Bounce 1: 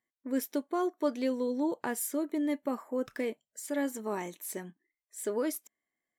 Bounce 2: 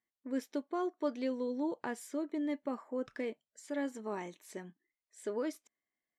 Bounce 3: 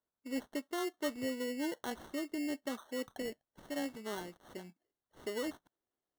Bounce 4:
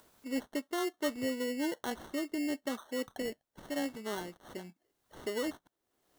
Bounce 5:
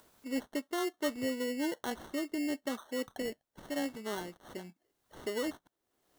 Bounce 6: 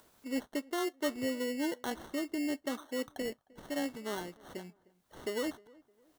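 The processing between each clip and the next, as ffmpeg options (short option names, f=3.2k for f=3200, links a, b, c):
-af "lowpass=5.7k,volume=-4.5dB"
-af "acrusher=samples=18:mix=1:aa=0.000001,volume=-2dB"
-af "acompressor=mode=upward:threshold=-48dB:ratio=2.5,volume=3dB"
-af anull
-filter_complex "[0:a]asplit=2[a][b];[b]adelay=307,lowpass=f=1.5k:p=1,volume=-23.5dB,asplit=2[c][d];[d]adelay=307,lowpass=f=1.5k:p=1,volume=0.38[e];[a][c][e]amix=inputs=3:normalize=0"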